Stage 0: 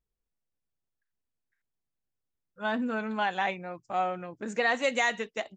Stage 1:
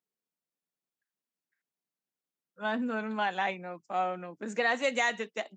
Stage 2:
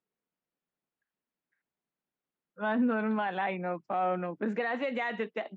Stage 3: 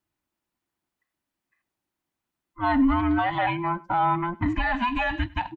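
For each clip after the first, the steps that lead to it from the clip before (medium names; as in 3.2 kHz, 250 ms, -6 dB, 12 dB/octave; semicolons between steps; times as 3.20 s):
steep high-pass 160 Hz; trim -1.5 dB
in parallel at +0.5 dB: gain riding 0.5 s; on the sum: peak limiter -19.5 dBFS, peak gain reduction 9 dB; distance through air 400 m
every band turned upside down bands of 500 Hz; delay 100 ms -23 dB; trim +7 dB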